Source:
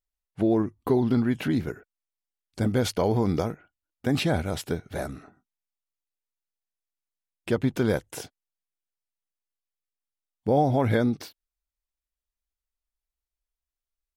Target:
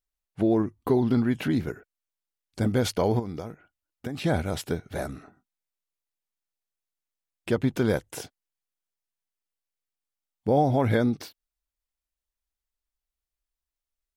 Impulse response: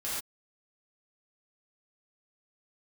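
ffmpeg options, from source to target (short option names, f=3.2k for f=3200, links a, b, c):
-filter_complex "[0:a]asettb=1/sr,asplit=3[a][b][c];[a]atrim=end=3.194[d];[b]atrim=start=3.19:end=4.24,asetpts=PTS-STARTPTS,afade=t=in:d=0.004:c=qsin,afade=t=out:st=1.046:d=0.004:c=qsin,acompressor=threshold=-31dB:ratio=6[e];[c]atrim=start=4.236[f];[d][e]acrossfade=d=0.004:c1=hsin:c2=qsin[g];[g][f]acrossfade=d=0.004:c1=qsin:c2=hsin"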